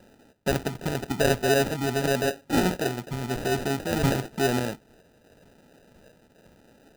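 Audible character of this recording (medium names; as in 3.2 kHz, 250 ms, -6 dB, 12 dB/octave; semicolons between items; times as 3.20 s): phasing stages 8, 0.92 Hz, lowest notch 610–2100 Hz; aliases and images of a low sample rate 1.1 kHz, jitter 0%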